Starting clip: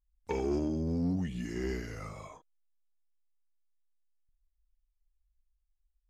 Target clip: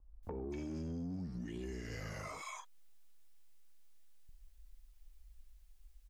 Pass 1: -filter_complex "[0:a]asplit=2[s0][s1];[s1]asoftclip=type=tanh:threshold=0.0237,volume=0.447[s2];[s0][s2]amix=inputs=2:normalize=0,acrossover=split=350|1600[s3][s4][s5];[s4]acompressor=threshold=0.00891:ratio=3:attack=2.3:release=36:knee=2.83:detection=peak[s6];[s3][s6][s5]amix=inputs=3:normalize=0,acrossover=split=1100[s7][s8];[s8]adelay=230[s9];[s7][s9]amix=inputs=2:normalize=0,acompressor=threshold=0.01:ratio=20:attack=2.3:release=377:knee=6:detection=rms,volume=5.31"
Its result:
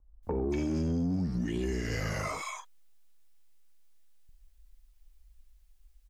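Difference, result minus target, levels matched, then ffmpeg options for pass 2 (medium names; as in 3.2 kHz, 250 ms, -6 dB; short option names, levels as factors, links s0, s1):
compression: peak gain reduction -11.5 dB
-filter_complex "[0:a]asplit=2[s0][s1];[s1]asoftclip=type=tanh:threshold=0.0237,volume=0.447[s2];[s0][s2]amix=inputs=2:normalize=0,acrossover=split=350|1600[s3][s4][s5];[s4]acompressor=threshold=0.00891:ratio=3:attack=2.3:release=36:knee=2.83:detection=peak[s6];[s3][s6][s5]amix=inputs=3:normalize=0,acrossover=split=1100[s7][s8];[s8]adelay=230[s9];[s7][s9]amix=inputs=2:normalize=0,acompressor=threshold=0.00251:ratio=20:attack=2.3:release=377:knee=6:detection=rms,volume=5.31"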